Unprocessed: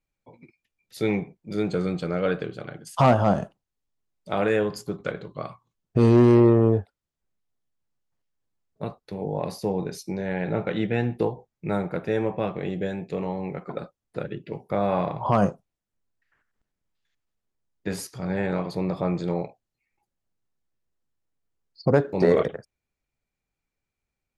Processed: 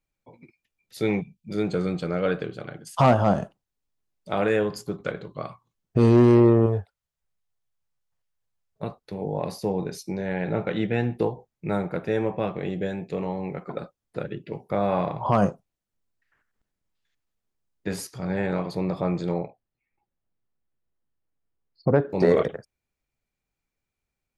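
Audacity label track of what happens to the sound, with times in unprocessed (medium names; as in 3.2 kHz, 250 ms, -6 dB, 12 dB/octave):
1.210000	1.490000	time-frequency box 250–2300 Hz -20 dB
6.660000	8.830000	peaking EQ 280 Hz -13.5 dB 0.93 oct
19.380000	22.100000	distance through air 300 m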